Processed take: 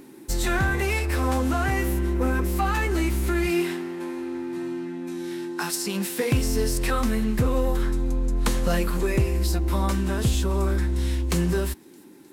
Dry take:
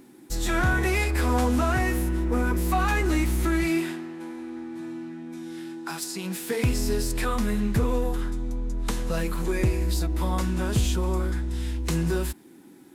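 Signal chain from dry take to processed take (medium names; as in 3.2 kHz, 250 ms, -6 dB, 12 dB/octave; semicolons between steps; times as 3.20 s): gain riding within 3 dB 0.5 s; on a send: feedback echo behind a high-pass 325 ms, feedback 61%, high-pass 3.6 kHz, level -23.5 dB; on the sum: tape speed +5%; trim +2 dB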